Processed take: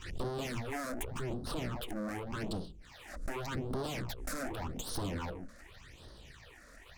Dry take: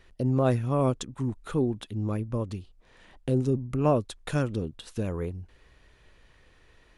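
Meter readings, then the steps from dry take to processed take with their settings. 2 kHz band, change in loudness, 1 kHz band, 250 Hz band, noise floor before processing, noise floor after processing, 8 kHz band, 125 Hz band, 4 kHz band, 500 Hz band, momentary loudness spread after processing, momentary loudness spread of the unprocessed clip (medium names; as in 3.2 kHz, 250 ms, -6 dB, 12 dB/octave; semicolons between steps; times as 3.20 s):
+0.5 dB, -10.5 dB, -7.0 dB, -11.0 dB, -59 dBFS, -56 dBFS, +1.0 dB, -13.0 dB, +0.5 dB, -11.5 dB, 16 LU, 11 LU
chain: low-pass 6.9 kHz 12 dB/octave; treble shelf 4.6 kHz +7 dB; hum notches 60/120/180/240/300/360/420/480/540 Hz; full-wave rectifier; valve stage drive 29 dB, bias 0.8; phase shifter stages 8, 0.86 Hz, lowest notch 110–2400 Hz; swell ahead of each attack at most 84 dB/s; trim +14.5 dB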